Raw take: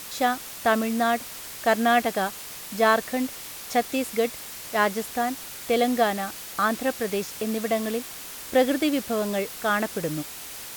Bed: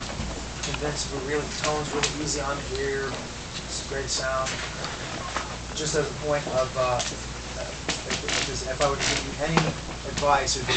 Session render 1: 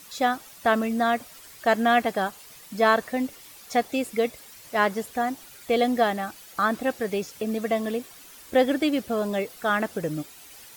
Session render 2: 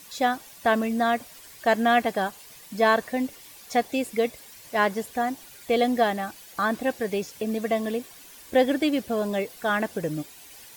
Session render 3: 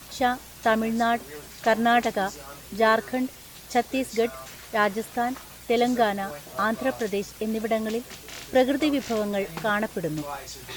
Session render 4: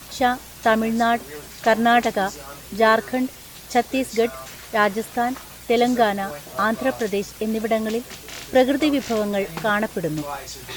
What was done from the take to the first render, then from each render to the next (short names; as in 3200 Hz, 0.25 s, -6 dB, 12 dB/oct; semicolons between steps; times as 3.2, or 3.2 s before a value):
denoiser 11 dB, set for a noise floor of -39 dBFS
notch 1300 Hz, Q 9.3
add bed -14.5 dB
gain +4 dB